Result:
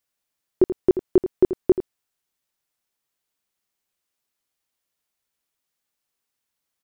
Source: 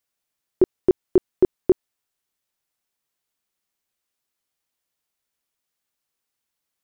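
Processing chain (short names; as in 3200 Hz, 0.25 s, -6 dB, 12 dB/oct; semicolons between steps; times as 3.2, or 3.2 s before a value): echo 83 ms -11.5 dB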